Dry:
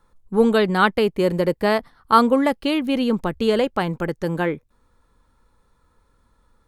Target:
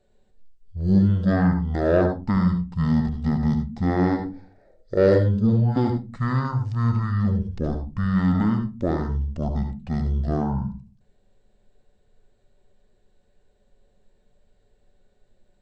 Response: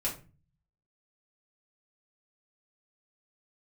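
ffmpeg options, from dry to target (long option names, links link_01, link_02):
-filter_complex "[0:a]asetrate=18846,aresample=44100,asplit=2[link_01][link_02];[1:a]atrim=start_sample=2205,asetrate=70560,aresample=44100,adelay=67[link_03];[link_02][link_03]afir=irnorm=-1:irlink=0,volume=-7dB[link_04];[link_01][link_04]amix=inputs=2:normalize=0,acontrast=31,volume=-8dB"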